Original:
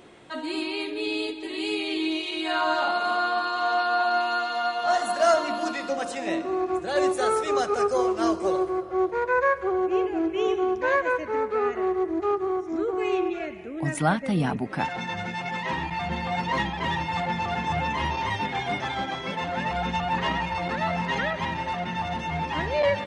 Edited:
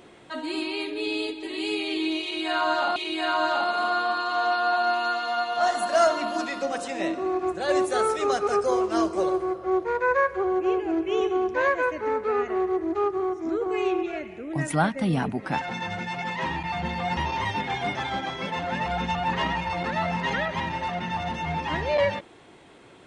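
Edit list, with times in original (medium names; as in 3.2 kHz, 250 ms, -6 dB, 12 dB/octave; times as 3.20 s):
2.23–2.96 s: loop, 2 plays
16.44–18.02 s: delete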